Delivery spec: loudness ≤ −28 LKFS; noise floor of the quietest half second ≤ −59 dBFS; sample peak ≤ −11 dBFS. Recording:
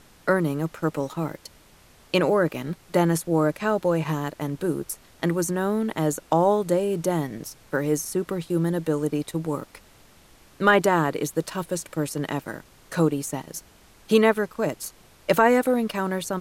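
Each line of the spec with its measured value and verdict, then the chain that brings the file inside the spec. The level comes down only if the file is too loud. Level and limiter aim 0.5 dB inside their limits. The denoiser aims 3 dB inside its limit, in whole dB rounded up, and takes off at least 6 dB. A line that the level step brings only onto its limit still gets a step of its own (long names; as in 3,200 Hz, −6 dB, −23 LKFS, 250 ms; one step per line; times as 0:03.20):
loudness −24.5 LKFS: out of spec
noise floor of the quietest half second −54 dBFS: out of spec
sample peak −6.0 dBFS: out of spec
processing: broadband denoise 6 dB, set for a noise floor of −54 dBFS
level −4 dB
brickwall limiter −11.5 dBFS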